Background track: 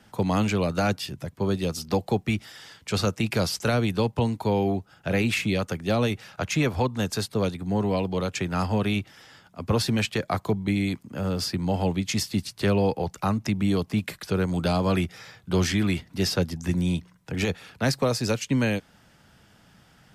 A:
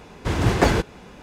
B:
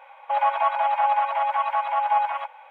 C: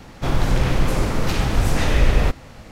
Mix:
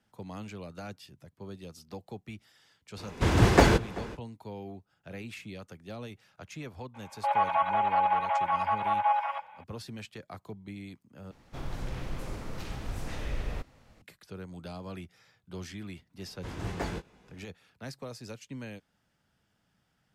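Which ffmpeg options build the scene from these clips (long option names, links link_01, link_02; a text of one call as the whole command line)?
ffmpeg -i bed.wav -i cue0.wav -i cue1.wav -i cue2.wav -filter_complex "[1:a]asplit=2[link_01][link_02];[0:a]volume=-18dB[link_03];[link_01]asplit=2[link_04][link_05];[link_05]adelay=384.8,volume=-20dB,highshelf=frequency=4000:gain=-8.66[link_06];[link_04][link_06]amix=inputs=2:normalize=0[link_07];[link_02]asplit=2[link_08][link_09];[link_09]adelay=20,volume=-7dB[link_10];[link_08][link_10]amix=inputs=2:normalize=0[link_11];[link_03]asplit=2[link_12][link_13];[link_12]atrim=end=11.314[link_14];[3:a]atrim=end=2.71,asetpts=PTS-STARTPTS,volume=-18dB[link_15];[link_13]atrim=start=14.016[link_16];[link_07]atrim=end=1.22,asetpts=PTS-STARTPTS,volume=-1.5dB,afade=type=in:duration=0.05,afade=type=out:start_time=1.17:duration=0.05,adelay=2960[link_17];[2:a]atrim=end=2.7,asetpts=PTS-STARTPTS,volume=-4.5dB,afade=type=in:duration=0.004:curve=hsin,afade=type=out:start_time=2.696:duration=0.004:curve=hsin,adelay=6940[link_18];[link_11]atrim=end=1.22,asetpts=PTS-STARTPTS,volume=-17.5dB,afade=type=in:duration=0.004:curve=hsin,afade=type=out:start_time=1.216:duration=0.004:curve=hsin,adelay=16180[link_19];[link_14][link_15]acrossfade=duration=0.004:curve1=hsin:curve2=hsin[link_20];[link_20][link_16]acrossfade=duration=0.004:curve1=hsin:curve2=hsin[link_21];[link_21][link_17][link_18][link_19]amix=inputs=4:normalize=0" out.wav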